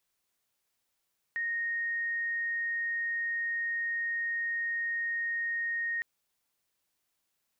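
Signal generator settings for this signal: tone sine 1.86 kHz -29.5 dBFS 4.66 s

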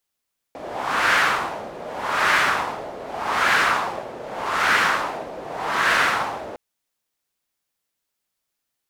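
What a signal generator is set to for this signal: wind-like swept noise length 6.01 s, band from 560 Hz, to 1.6 kHz, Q 2.1, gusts 5, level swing 17 dB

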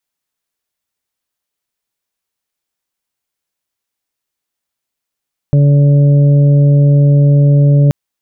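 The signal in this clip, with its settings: steady additive tone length 2.38 s, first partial 143 Hz, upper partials -15.5/-19/-16 dB, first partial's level -5 dB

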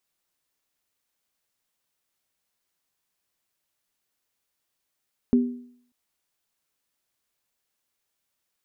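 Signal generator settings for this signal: sine partials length 0.59 s, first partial 245 Hz, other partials 395 Hz, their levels -10.5 dB, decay 0.60 s, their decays 0.50 s, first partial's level -13 dB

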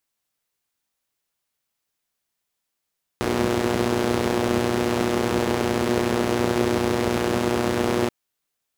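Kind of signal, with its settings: four-cylinder engine model, steady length 4.88 s, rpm 3600, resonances 97/210/340 Hz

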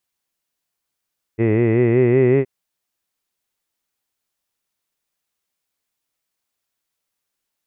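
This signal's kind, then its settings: formant-synthesis vowel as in hid, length 1.07 s, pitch 109 Hz, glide +3.5 st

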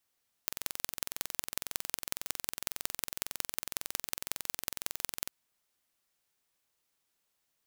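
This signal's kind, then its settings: pulse train 21.9 per s, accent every 4, -3 dBFS 4.80 s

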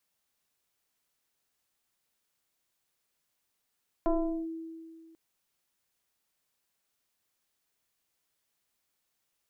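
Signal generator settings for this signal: FM tone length 1.09 s, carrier 326 Hz, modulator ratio 1.05, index 1.5, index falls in 0.41 s linear, decay 2.07 s, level -22 dB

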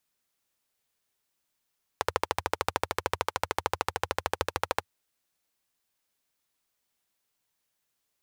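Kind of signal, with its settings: single-cylinder engine model, steady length 2.85 s, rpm 1600, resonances 87/500/870 Hz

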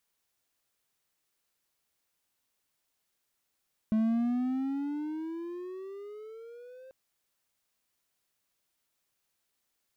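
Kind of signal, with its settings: gliding synth tone triangle, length 2.99 s, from 216 Hz, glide +15.5 st, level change -24.5 dB, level -21 dB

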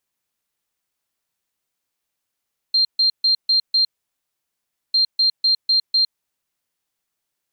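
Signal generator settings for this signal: beep pattern sine 4.18 kHz, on 0.11 s, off 0.14 s, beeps 5, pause 1.09 s, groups 2, -13 dBFS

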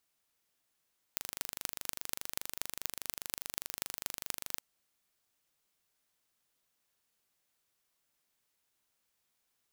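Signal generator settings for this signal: pulse train 24.9 per s, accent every 6, -5.5 dBFS 3.45 s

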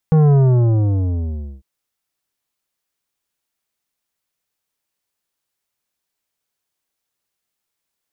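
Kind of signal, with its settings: sub drop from 160 Hz, over 1.50 s, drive 11 dB, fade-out 1.30 s, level -10 dB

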